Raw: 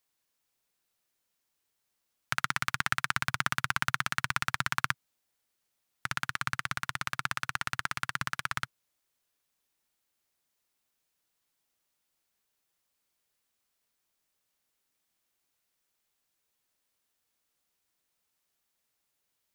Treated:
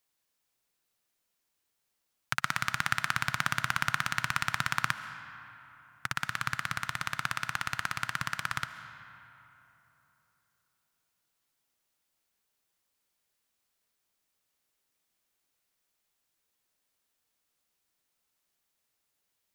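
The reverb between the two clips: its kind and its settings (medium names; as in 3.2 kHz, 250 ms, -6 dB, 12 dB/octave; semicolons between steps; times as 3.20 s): algorithmic reverb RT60 3.4 s, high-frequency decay 0.55×, pre-delay 95 ms, DRR 10.5 dB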